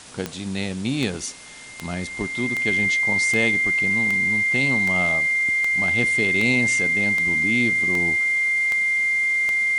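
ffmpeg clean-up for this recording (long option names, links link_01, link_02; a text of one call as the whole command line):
ffmpeg -i in.wav -af "adeclick=threshold=4,bandreject=frequency=2100:width=30,afwtdn=0.0089" out.wav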